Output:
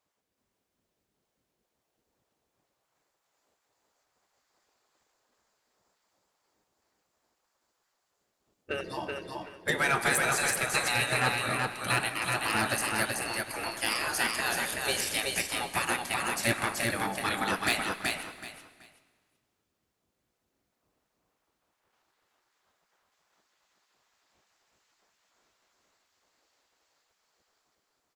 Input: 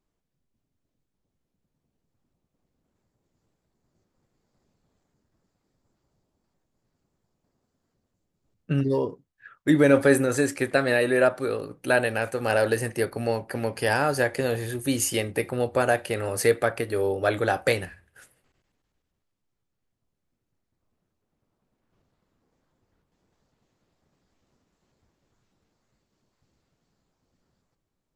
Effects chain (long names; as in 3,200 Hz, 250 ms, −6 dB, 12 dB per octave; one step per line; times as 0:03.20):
gate on every frequency bin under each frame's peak −15 dB weak
soft clipping −23.5 dBFS, distortion −15 dB
repeating echo 378 ms, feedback 23%, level −3 dB
on a send at −14 dB: convolution reverb RT60 1.5 s, pre-delay 97 ms
on the sum: level +5 dB